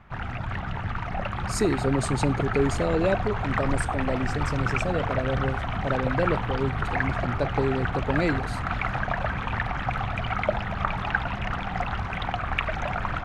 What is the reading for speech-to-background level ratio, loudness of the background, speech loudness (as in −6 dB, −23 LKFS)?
0.5 dB, −29.0 LKFS, −28.5 LKFS